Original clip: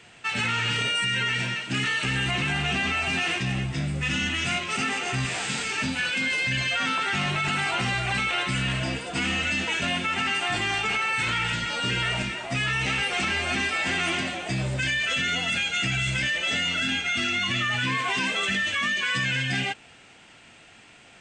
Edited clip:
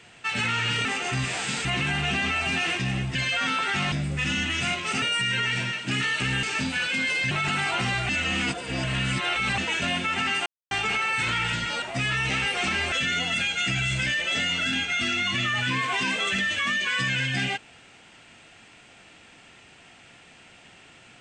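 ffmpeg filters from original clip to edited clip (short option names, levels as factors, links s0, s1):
-filter_complex "[0:a]asplit=14[s0][s1][s2][s3][s4][s5][s6][s7][s8][s9][s10][s11][s12][s13];[s0]atrim=end=0.852[s14];[s1]atrim=start=4.858:end=5.662[s15];[s2]atrim=start=2.258:end=3.762[s16];[s3]atrim=start=6.538:end=7.312[s17];[s4]atrim=start=3.758:end=4.862[s18];[s5]atrim=start=0.848:end=2.262[s19];[s6]atrim=start=5.658:end=6.542[s20];[s7]atrim=start=7.308:end=8.092[s21];[s8]atrim=start=8.088:end=9.582,asetpts=PTS-STARTPTS,areverse[s22];[s9]atrim=start=9.578:end=10.46,asetpts=PTS-STARTPTS,afade=t=out:st=0.878:d=0.004:c=hsin[s23];[s10]atrim=start=10.46:end=10.71,asetpts=PTS-STARTPTS,volume=0[s24];[s11]atrim=start=10.71:end=11.822,asetpts=PTS-STARTPTS,afade=t=in:d=0.004:c=hsin[s25];[s12]atrim=start=12.378:end=13.482[s26];[s13]atrim=start=15.078[s27];[s14][s15]acrossfade=d=0.004:c1=hsin:c2=hsin[s28];[s28][s16]acrossfade=d=0.004:c1=hsin:c2=hsin[s29];[s29][s17]acrossfade=d=0.004:c1=hsin:c2=hsin[s30];[s30][s18]acrossfade=d=0.004:c1=hsin:c2=hsin[s31];[s31][s19]acrossfade=d=0.004:c1=hsin:c2=hsin[s32];[s32][s20]acrossfade=d=0.004:c1=hsin:c2=hsin[s33];[s33][s21]acrossfade=d=0.004:c1=hsin:c2=hsin[s34];[s34][s22]acrossfade=d=0.004:c1=hsin:c2=hsin[s35];[s23][s24][s25]concat=n=3:v=0:a=1[s36];[s35][s36]acrossfade=d=0.004:c1=hsin:c2=hsin[s37];[s37][s26]acrossfade=d=0.004:c1=hsin:c2=hsin[s38];[s38][s27]acrossfade=d=0.004:c1=hsin:c2=hsin"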